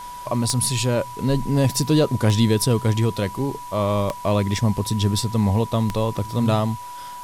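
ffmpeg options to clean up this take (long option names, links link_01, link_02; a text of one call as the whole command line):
ffmpeg -i in.wav -af "adeclick=threshold=4,bandreject=frequency=980:width=30,afwtdn=0.0056" out.wav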